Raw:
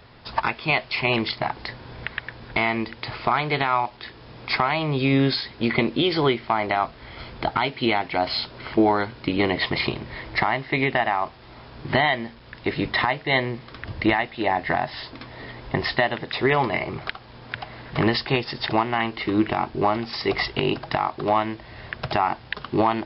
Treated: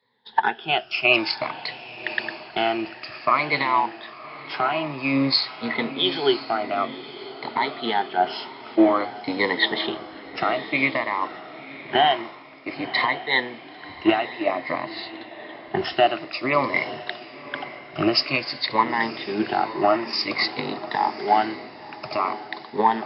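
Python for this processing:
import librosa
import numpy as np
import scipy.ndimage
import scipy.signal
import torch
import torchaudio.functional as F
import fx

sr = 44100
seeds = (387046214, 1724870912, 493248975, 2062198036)

y = fx.spec_ripple(x, sr, per_octave=0.99, drift_hz=-0.53, depth_db=18)
y = scipy.signal.sosfilt(scipy.signal.butter(2, 230.0, 'highpass', fs=sr, output='sos'), y)
y = fx.rider(y, sr, range_db=3, speed_s=2.0)
y = fx.echo_diffused(y, sr, ms=998, feedback_pct=51, wet_db=-9.0)
y = fx.band_widen(y, sr, depth_pct=70)
y = y * 10.0 ** (-4.0 / 20.0)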